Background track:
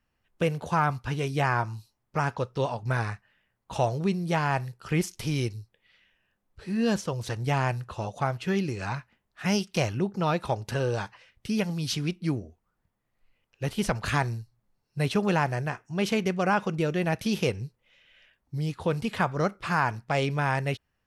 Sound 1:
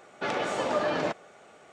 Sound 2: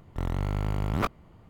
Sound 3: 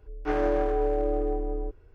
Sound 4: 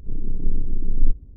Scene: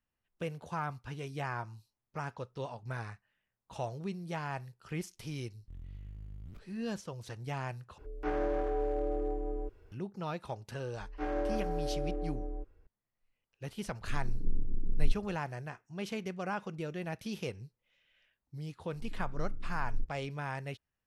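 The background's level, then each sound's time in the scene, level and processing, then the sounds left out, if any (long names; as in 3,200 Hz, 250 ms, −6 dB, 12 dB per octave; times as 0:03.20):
background track −12 dB
0:05.52: mix in 2 −8.5 dB + guitar amp tone stack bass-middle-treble 10-0-1
0:07.98: overwrite with 3 −7 dB + multiband upward and downward compressor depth 40%
0:10.93: mix in 3 −9.5 dB + comb filter 3.7 ms, depth 39%
0:14.01: mix in 4 −10 dB
0:18.93: mix in 4 −17 dB
not used: 1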